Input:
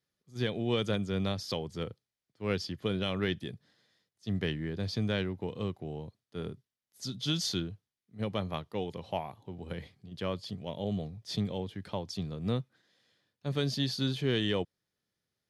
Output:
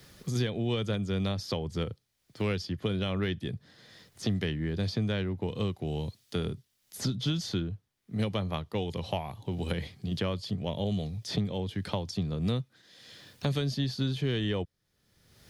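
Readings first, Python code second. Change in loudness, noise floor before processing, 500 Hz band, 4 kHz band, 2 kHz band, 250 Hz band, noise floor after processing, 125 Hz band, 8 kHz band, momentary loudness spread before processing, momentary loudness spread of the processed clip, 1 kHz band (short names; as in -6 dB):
+2.0 dB, under -85 dBFS, +0.5 dB, 0.0 dB, +0.5 dB, +2.5 dB, -76 dBFS, +4.5 dB, +0.5 dB, 13 LU, 8 LU, +1.0 dB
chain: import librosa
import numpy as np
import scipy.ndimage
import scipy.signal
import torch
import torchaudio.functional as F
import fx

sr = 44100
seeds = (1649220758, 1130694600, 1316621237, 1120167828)

y = fx.low_shelf(x, sr, hz=86.0, db=11.5)
y = fx.band_squash(y, sr, depth_pct=100)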